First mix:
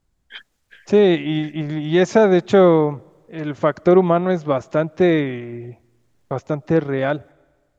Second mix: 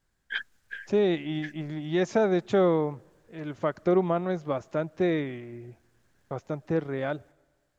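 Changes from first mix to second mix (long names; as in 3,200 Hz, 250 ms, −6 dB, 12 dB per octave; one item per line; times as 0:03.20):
first voice: add parametric band 1,600 Hz +11 dB 0.31 octaves
second voice −10.0 dB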